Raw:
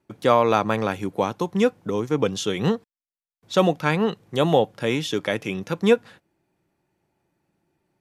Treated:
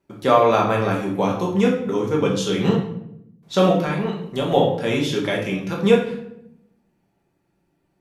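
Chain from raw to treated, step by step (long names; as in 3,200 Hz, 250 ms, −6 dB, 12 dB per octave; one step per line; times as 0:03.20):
0:03.76–0:04.52: downward compressor, threshold −22 dBFS, peak gain reduction 8 dB
convolution reverb RT60 0.80 s, pre-delay 5 ms, DRR −2.5 dB
level −2 dB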